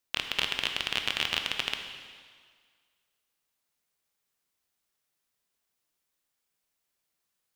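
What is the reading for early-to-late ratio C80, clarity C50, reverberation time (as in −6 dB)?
7.0 dB, 6.0 dB, 1.8 s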